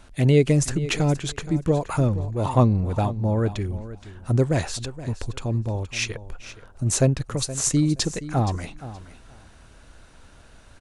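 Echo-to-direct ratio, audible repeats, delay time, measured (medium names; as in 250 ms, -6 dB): -15.0 dB, 2, 472 ms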